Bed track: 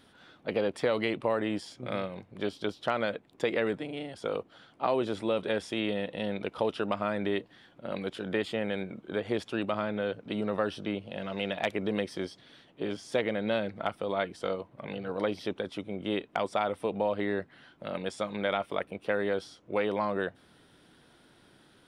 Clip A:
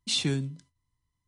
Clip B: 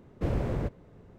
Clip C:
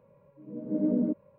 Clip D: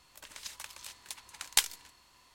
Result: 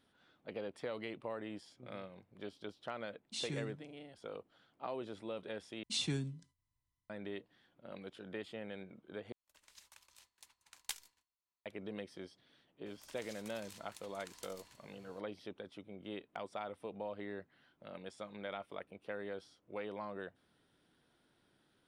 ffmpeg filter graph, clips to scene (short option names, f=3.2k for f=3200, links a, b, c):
-filter_complex "[1:a]asplit=2[a][b];[4:a]asplit=2[c][d];[0:a]volume=-14dB[e];[c]agate=range=-33dB:threshold=-50dB:ratio=3:release=100:detection=peak[f];[d]acompressor=threshold=-42dB:ratio=6:attack=3.2:release=140:knee=1:detection=peak[g];[e]asplit=3[h][i][j];[h]atrim=end=5.834[k];[b]atrim=end=1.27,asetpts=PTS-STARTPTS,volume=-9dB[l];[i]atrim=start=7.096:end=9.324[m];[f]atrim=end=2.34,asetpts=PTS-STARTPTS,volume=-16.5dB[n];[j]atrim=start=11.656[o];[a]atrim=end=1.27,asetpts=PTS-STARTPTS,volume=-14dB,afade=t=in:d=0.004:c=hsin,afade=t=out:st=1.266:d=0.004:c=hsin,adelay=143325S[p];[g]atrim=end=2.34,asetpts=PTS-STARTPTS,volume=-7dB,afade=t=in:d=0.004:c=hsin,afade=t=out:st=2.336:d=0.004:c=hsin,adelay=12860[q];[k][l]acrossfade=d=0.004:c1=hsin:c2=hsin[r];[r][m]acrossfade=d=0.004:c1=hsin:c2=hsin[s];[s][n]acrossfade=d=0.004:c1=hsin:c2=hsin[t];[t][o]acrossfade=d=0.004:c1=hsin:c2=hsin[u];[u][p][q]amix=inputs=3:normalize=0"